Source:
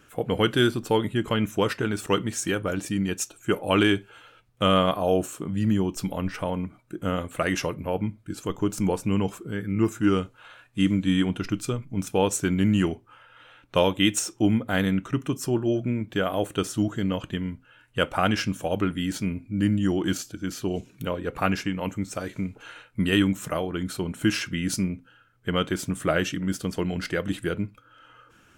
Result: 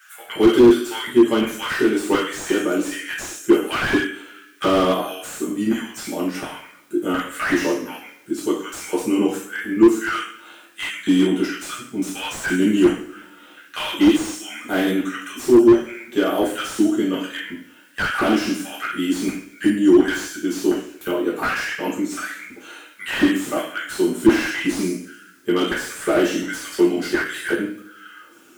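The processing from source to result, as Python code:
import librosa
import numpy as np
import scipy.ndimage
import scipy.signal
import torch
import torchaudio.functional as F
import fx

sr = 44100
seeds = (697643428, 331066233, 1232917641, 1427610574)

y = fx.high_shelf(x, sr, hz=5500.0, db=11.5)
y = fx.dmg_noise_colour(y, sr, seeds[0], colour='white', level_db=-63.0)
y = fx.filter_lfo_highpass(y, sr, shape='square', hz=1.4, low_hz=310.0, high_hz=1600.0, q=4.2)
y = fx.rev_double_slope(y, sr, seeds[1], early_s=0.51, late_s=1.7, knee_db=-25, drr_db=-7.5)
y = fx.slew_limit(y, sr, full_power_hz=300.0)
y = F.gain(torch.from_numpy(y), -5.5).numpy()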